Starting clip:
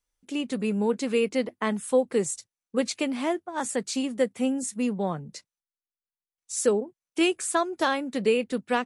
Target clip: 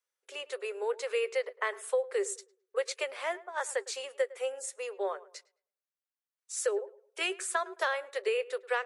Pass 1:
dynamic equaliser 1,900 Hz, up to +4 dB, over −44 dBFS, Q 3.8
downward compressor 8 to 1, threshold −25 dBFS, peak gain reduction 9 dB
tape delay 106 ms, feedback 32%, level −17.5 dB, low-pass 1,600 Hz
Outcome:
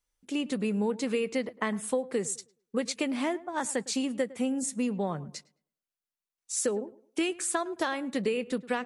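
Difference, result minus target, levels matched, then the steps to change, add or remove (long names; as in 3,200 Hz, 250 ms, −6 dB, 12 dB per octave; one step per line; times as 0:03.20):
500 Hz band −2.5 dB
add after dynamic equaliser: Chebyshev high-pass with heavy ripple 380 Hz, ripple 6 dB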